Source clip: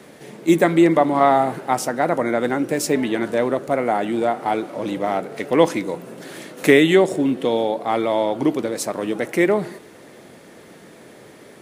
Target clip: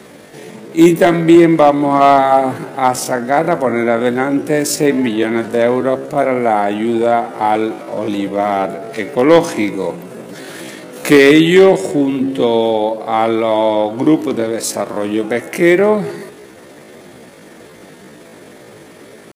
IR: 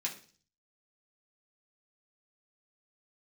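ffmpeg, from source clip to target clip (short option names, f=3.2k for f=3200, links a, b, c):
-af "bandreject=f=135.5:t=h:w=4,bandreject=f=271:t=h:w=4,bandreject=f=406.5:t=h:w=4,bandreject=f=542:t=h:w=4,bandreject=f=677.5:t=h:w=4,bandreject=f=813:t=h:w=4,bandreject=f=948.5:t=h:w=4,bandreject=f=1.084k:t=h:w=4,bandreject=f=1.2195k:t=h:w=4,bandreject=f=1.355k:t=h:w=4,bandreject=f=1.4905k:t=h:w=4,bandreject=f=1.626k:t=h:w=4,bandreject=f=1.7615k:t=h:w=4,bandreject=f=1.897k:t=h:w=4,bandreject=f=2.0325k:t=h:w=4,bandreject=f=2.168k:t=h:w=4,bandreject=f=2.3035k:t=h:w=4,bandreject=f=2.439k:t=h:w=4,bandreject=f=2.5745k:t=h:w=4,bandreject=f=2.71k:t=h:w=4,bandreject=f=2.8455k:t=h:w=4,bandreject=f=2.981k:t=h:w=4,bandreject=f=3.1165k:t=h:w=4,bandreject=f=3.252k:t=h:w=4,asoftclip=type=hard:threshold=-7.5dB,atempo=0.6,volume=6.5dB"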